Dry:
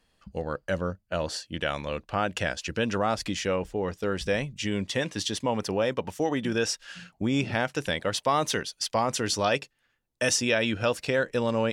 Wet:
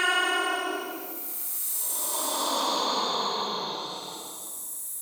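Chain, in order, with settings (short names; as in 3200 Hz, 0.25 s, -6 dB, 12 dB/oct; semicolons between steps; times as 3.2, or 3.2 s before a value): Paulstretch 41×, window 0.10 s, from 8.4; notches 50/100/150 Hz; speed mistake 33 rpm record played at 78 rpm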